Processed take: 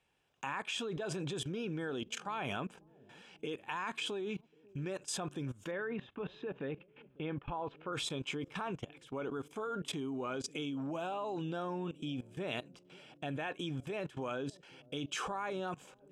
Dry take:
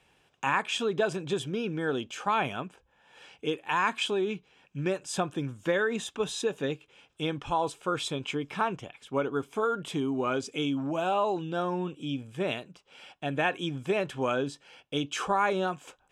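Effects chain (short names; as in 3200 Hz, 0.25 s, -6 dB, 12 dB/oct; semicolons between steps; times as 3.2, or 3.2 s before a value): 5.71–7.93 LPF 2600 Hz 24 dB/oct; level quantiser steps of 20 dB; analogue delay 0.545 s, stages 2048, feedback 61%, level -22.5 dB; gain +2 dB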